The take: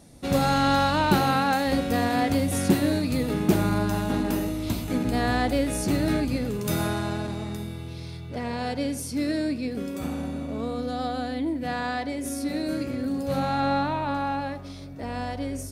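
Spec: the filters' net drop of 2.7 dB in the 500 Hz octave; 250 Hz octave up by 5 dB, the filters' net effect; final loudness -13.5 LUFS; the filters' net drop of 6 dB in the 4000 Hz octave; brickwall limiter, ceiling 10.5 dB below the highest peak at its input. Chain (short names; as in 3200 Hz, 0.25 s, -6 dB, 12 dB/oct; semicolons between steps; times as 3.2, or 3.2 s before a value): bell 250 Hz +7.5 dB; bell 500 Hz -5.5 dB; bell 4000 Hz -7 dB; gain +11.5 dB; limiter -3.5 dBFS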